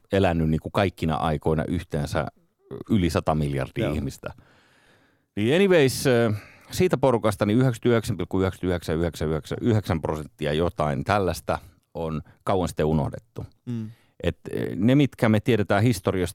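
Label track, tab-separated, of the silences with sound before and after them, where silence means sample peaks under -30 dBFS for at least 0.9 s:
4.310000	5.370000	silence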